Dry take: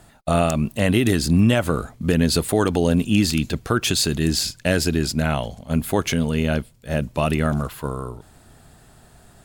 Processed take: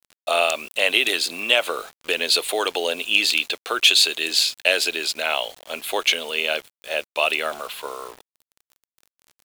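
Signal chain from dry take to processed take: HPF 460 Hz 24 dB/oct; band shelf 3100 Hz +10.5 dB 1.1 oct; bit-crush 7-bit

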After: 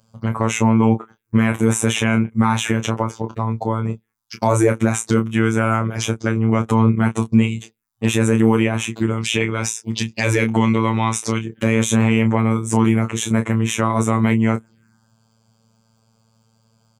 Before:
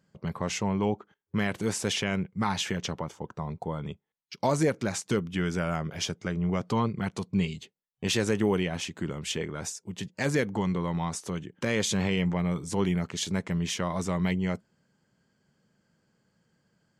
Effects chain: 9.18–11.43 band shelf 3400 Hz +8.5 dB; envelope phaser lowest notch 300 Hz, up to 4700 Hz, full sweep at -30 dBFS; robotiser 112 Hz; doubler 26 ms -8 dB; maximiser +17.5 dB; gain -2 dB

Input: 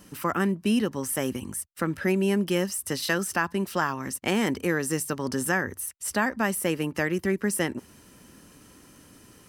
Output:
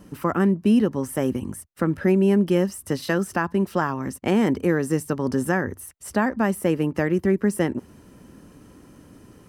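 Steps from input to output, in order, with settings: tilt shelf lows +6.5 dB, about 1400 Hz

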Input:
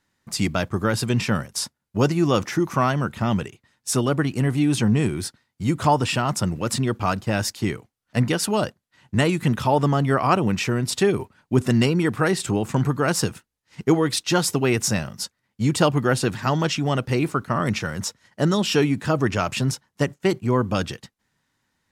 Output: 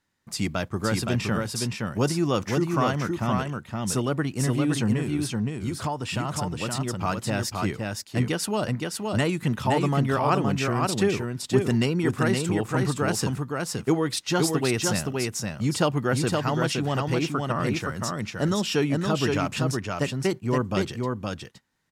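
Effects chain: 4.96–6.99 compressor, threshold -21 dBFS, peak gain reduction 8 dB; echo 0.518 s -3.5 dB; gain -4.5 dB

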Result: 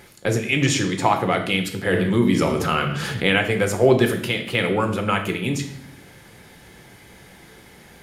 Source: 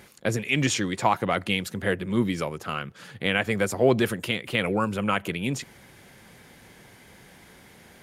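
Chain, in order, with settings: reverb RT60 0.65 s, pre-delay 6 ms, DRR 5 dB; 1.93–3.39 fast leveller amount 50%; gain +2.5 dB

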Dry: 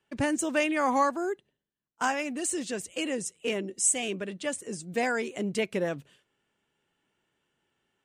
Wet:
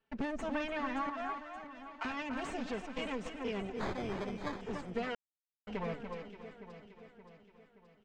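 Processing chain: minimum comb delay 4.5 ms; high shelf 6200 Hz -7 dB; echo 0.291 s -12.5 dB; compressor, threshold -31 dBFS, peak gain reduction 9 dB; 1.09–2.05 HPF 630 Hz 24 dB/oct; 3.76–4.61 sample-rate reducer 2800 Hz, jitter 0%; air absorption 150 m; echo with dull and thin repeats by turns 0.287 s, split 2100 Hz, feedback 71%, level -8 dB; 5.15–5.67 mute; gain -2 dB

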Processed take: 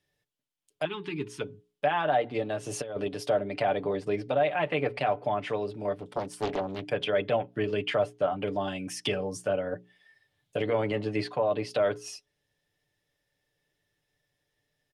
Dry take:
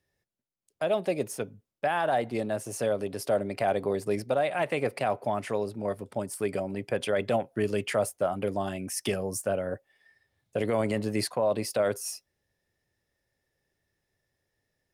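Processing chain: bell 3200 Hz +7.5 dB 0.63 oct; notches 60/120/180/240/300/360/420 Hz; comb 6.8 ms, depth 55%; treble ducked by the level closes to 2800 Hz, closed at -24 dBFS; 0.85–1.41 elliptic band-stop 400–920 Hz, stop band 40 dB; 2.63–3.09 negative-ratio compressor -30 dBFS, ratio -0.5; 5.95–6.85 Doppler distortion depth 0.77 ms; gain -1 dB

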